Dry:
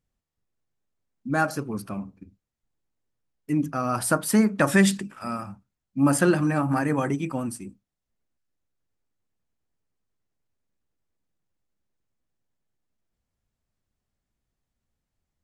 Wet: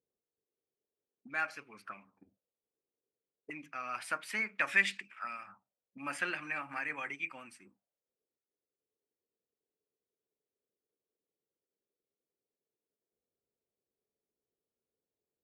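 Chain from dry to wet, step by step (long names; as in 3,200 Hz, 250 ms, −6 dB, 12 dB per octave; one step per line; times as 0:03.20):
envelope filter 430–2,300 Hz, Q 4.7, up, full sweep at −28 dBFS
level +5 dB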